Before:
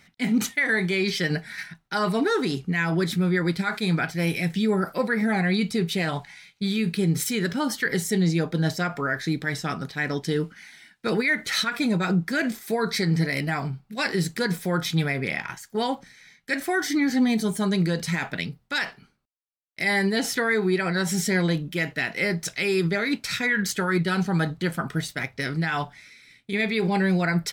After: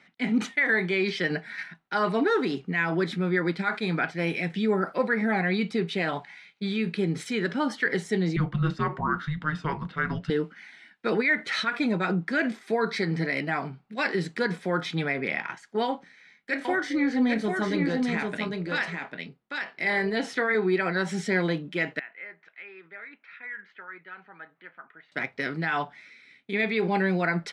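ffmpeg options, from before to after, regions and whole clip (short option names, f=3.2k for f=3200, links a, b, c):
-filter_complex "[0:a]asettb=1/sr,asplit=3[a][b][c];[a]atrim=end=8.364[d];[b]atrim=start=8.36:end=10.3,asetpts=PTS-STARTPTS,afade=t=in:d=0.004:c=qsin,afade=t=out:st=1.936:d=0.004:c=qsin,afreqshift=-310,bass=f=250:g=8,treble=f=4k:g=-9,bandreject=f=3.4k:w=19[e];[c]atrim=start=10.296[f];[d][e]acrossfade=d=0.004:c1=hsin:c2=qsin[g];[g][f]acrossfade=d=0.004:c1=qsin:c2=hsin,asettb=1/sr,asplit=3[h][i][j];[h]atrim=end=15.854[k];[i]atrim=start=15.85:end=20.55,asetpts=PTS-STARTPTS,afade=t=in:d=0.004:c=qsin,afade=t=out:st=4.696:d=0.004:c=qsin,tremolo=f=240:d=0.4,asplit=2[l][m];[m]adelay=28,volume=-13.5dB[n];[l][n]amix=inputs=2:normalize=0,atrim=end_sample=207270,aecho=1:1:798:0.631,atrim=end_sample=207270[o];[j]atrim=start=20.546[p];[k][o]acrossfade=d=0.004:c1=hsin:c2=qsin[q];[q][p]acrossfade=d=0.004:c1=qsin:c2=hsin,asettb=1/sr,asplit=3[r][s][t];[r]atrim=end=21.994[u];[s]atrim=start=21.99:end=25.12,asetpts=PTS-STARTPTS,afade=t=in:d=0.004:c=qsin,afade=t=out:st=3.126:d=0.004:c=qsin,lowpass=f=2.1k:w=0.5412,lowpass=f=2.1k:w=1.3066,aderivative,acompressor=mode=upward:threshold=-49dB:ratio=2.5:attack=3.2:release=140:knee=2.83:detection=peak[v];[t]atrim=start=25.116[w];[u][v]acrossfade=d=0.004:c1=hsin:c2=qsin[x];[x][w]acrossfade=d=0.004:c1=qsin:c2=hsin,lowpass=f=9.8k:w=0.5412,lowpass=f=9.8k:w=1.3066,acrossover=split=180 3600:gain=0.0794 1 0.178[y][z][aa];[y][z][aa]amix=inputs=3:normalize=0"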